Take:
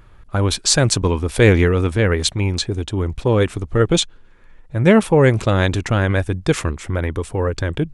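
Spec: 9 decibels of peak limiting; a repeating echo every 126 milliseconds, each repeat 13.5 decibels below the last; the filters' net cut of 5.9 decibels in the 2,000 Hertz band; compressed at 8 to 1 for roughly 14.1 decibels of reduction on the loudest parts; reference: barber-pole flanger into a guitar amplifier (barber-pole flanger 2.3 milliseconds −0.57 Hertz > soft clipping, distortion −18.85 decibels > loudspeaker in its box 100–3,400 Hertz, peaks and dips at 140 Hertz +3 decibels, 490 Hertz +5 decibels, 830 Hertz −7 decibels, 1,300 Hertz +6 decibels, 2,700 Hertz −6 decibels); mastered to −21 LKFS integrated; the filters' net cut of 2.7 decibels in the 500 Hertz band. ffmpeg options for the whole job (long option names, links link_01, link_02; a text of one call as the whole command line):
ffmpeg -i in.wav -filter_complex "[0:a]equalizer=frequency=500:width_type=o:gain=-6,equalizer=frequency=2000:width_type=o:gain=-8,acompressor=threshold=-24dB:ratio=8,alimiter=limit=-22dB:level=0:latency=1,aecho=1:1:126|252:0.211|0.0444,asplit=2[link_01][link_02];[link_02]adelay=2.3,afreqshift=-0.57[link_03];[link_01][link_03]amix=inputs=2:normalize=1,asoftclip=threshold=-25.5dB,highpass=100,equalizer=frequency=140:width_type=q:width=4:gain=3,equalizer=frequency=490:width_type=q:width=4:gain=5,equalizer=frequency=830:width_type=q:width=4:gain=-7,equalizer=frequency=1300:width_type=q:width=4:gain=6,equalizer=frequency=2700:width_type=q:width=4:gain=-6,lowpass=frequency=3400:width=0.5412,lowpass=frequency=3400:width=1.3066,volume=16.5dB" out.wav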